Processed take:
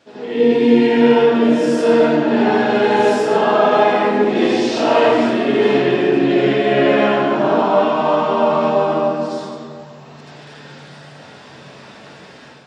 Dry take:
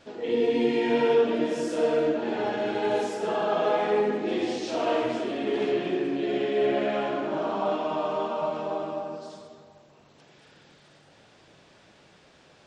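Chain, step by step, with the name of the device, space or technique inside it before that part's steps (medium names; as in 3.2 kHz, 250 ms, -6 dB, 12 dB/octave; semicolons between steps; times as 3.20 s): far laptop microphone (reverberation RT60 0.50 s, pre-delay 73 ms, DRR -9.5 dB; high-pass 120 Hz; level rider gain up to 7.5 dB)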